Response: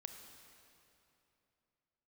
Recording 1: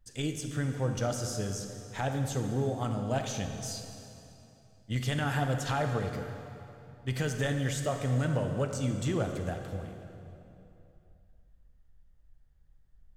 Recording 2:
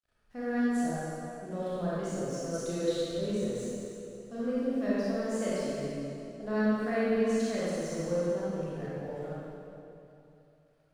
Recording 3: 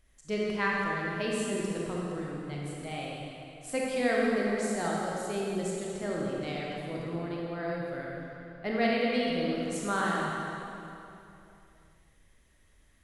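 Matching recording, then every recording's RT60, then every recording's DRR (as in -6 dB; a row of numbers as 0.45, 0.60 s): 1; 3.0, 3.0, 3.0 s; 5.0, -10.5, -4.0 dB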